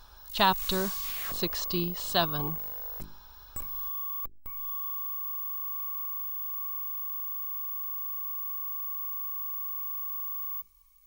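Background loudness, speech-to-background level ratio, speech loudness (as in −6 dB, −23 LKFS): −32.0 LKFS, 2.0 dB, −30.0 LKFS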